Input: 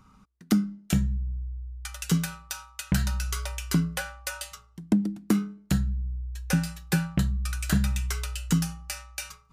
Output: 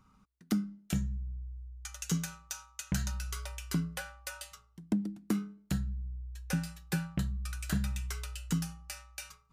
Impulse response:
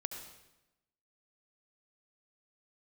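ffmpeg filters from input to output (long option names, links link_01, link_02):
-filter_complex "[0:a]asettb=1/sr,asplit=3[link_01][link_02][link_03];[link_01]atrim=end=0.954[link_04];[link_02]atrim=start=0.95:end=3.12,asetpts=PTS-STARTPTS,afade=type=in:duration=0.004:curve=qsin,afade=type=out:start_time=2.166:duration=0.004:curve=qsin,equalizer=frequency=6500:width_type=o:width=0.33:gain=9[link_05];[link_03]atrim=start=3.116[link_06];[link_04][link_05]acrossfade=duration=0.004:curve1=hsin:curve2=qsin[link_07];[link_07][link_06]acrossfade=duration=0.004:curve1=qsin:curve2=hsin,volume=-8dB"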